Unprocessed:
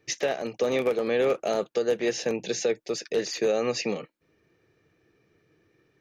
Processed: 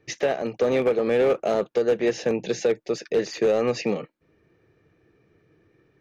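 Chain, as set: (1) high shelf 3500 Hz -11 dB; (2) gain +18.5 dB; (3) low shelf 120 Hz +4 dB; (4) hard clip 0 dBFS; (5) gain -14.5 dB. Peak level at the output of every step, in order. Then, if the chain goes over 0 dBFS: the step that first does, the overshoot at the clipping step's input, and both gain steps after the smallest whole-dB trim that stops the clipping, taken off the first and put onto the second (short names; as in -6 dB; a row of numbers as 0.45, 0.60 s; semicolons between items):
-15.0, +3.5, +4.0, 0.0, -14.5 dBFS; step 2, 4.0 dB; step 2 +14.5 dB, step 5 -10.5 dB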